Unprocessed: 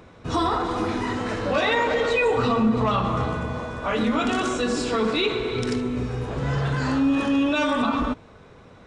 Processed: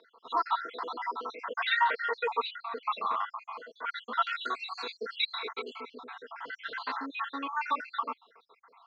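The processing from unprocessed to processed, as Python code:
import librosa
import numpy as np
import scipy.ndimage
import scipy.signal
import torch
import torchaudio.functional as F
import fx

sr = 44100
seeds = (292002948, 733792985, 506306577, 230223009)

y = fx.spec_dropout(x, sr, seeds[0], share_pct=69)
y = fx.cabinet(y, sr, low_hz=410.0, low_slope=24, high_hz=4600.0, hz=(420.0, 600.0, 990.0, 1400.0, 2100.0, 4000.0), db=(-3, -8, 8, 7, 5, 7))
y = y + 0.43 * np.pad(y, (int(4.4 * sr / 1000.0), 0))[:len(y)]
y = y * 10.0 ** (-7.0 / 20.0)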